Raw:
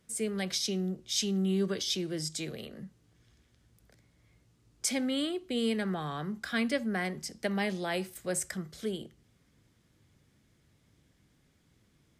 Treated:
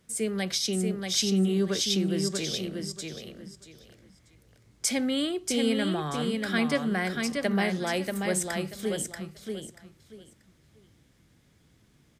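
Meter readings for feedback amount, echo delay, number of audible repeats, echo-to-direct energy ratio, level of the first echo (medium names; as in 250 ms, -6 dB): 22%, 635 ms, 3, -4.5 dB, -4.5 dB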